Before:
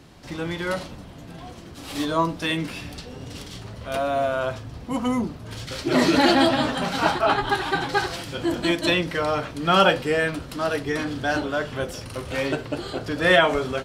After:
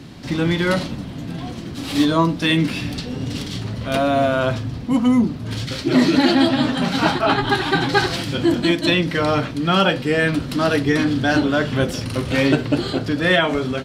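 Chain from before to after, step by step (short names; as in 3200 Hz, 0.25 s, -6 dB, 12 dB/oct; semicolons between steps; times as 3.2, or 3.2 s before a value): graphic EQ 125/250/2000/4000 Hz +7/+9/+3/+5 dB; vocal rider within 4 dB 0.5 s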